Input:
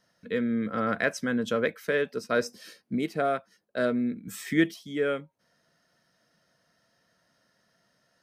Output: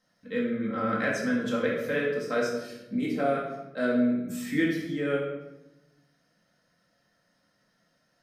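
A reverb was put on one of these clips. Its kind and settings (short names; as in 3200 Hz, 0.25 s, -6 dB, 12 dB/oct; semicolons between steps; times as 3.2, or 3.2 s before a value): shoebox room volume 380 m³, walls mixed, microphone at 2.1 m; gain -6.5 dB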